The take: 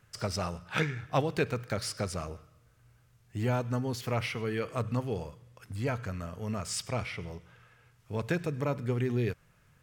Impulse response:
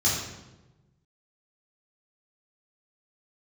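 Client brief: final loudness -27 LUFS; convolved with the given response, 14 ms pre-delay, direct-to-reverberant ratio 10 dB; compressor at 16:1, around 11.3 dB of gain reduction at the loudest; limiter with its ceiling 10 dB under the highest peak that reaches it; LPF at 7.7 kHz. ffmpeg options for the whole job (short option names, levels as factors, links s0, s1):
-filter_complex "[0:a]lowpass=7700,acompressor=threshold=0.02:ratio=16,alimiter=level_in=2.11:limit=0.0631:level=0:latency=1,volume=0.473,asplit=2[s0][s1];[1:a]atrim=start_sample=2205,adelay=14[s2];[s1][s2]afir=irnorm=-1:irlink=0,volume=0.0794[s3];[s0][s3]amix=inputs=2:normalize=0,volume=4.47"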